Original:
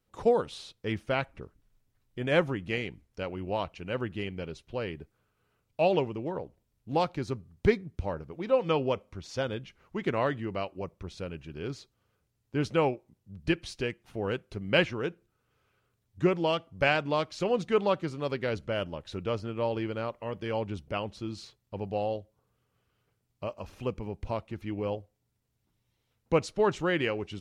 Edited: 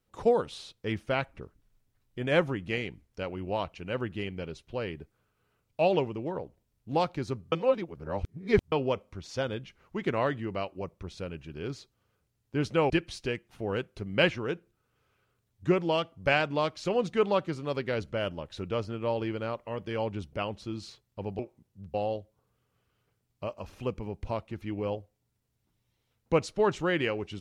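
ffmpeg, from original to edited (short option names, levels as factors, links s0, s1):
-filter_complex "[0:a]asplit=6[s0][s1][s2][s3][s4][s5];[s0]atrim=end=7.522[s6];[s1]atrim=start=7.518:end=8.722,asetpts=PTS-STARTPTS,areverse[s7];[s2]atrim=start=8.718:end=12.902[s8];[s3]atrim=start=13.448:end=21.942[s9];[s4]atrim=start=12.898:end=13.452[s10];[s5]atrim=start=21.938[s11];[s6][s7]acrossfade=d=0.004:c1=hsin:c2=hsin[s12];[s12][s8]acrossfade=d=0.004:c1=hsin:c2=hsin[s13];[s13][s9]acrossfade=d=0.004:c1=hsin:c2=hsin[s14];[s14][s10]acrossfade=d=0.004:c1=hsin:c2=hsin[s15];[s15][s11]acrossfade=d=0.004:c1=hsin:c2=hsin"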